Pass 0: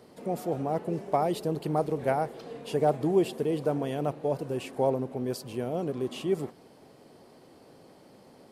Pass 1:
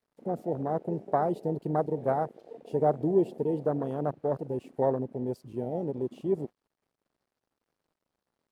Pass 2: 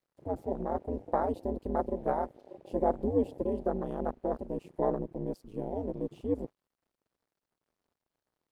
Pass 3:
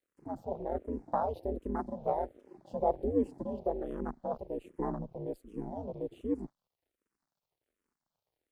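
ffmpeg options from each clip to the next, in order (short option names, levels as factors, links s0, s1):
-af "aeval=exprs='sgn(val(0))*max(abs(val(0))-0.00282,0)':c=same,afwtdn=0.0251"
-af "aeval=exprs='val(0)*sin(2*PI*97*n/s)':c=same"
-filter_complex "[0:a]asplit=2[s0][s1];[s1]afreqshift=-1.3[s2];[s0][s2]amix=inputs=2:normalize=1"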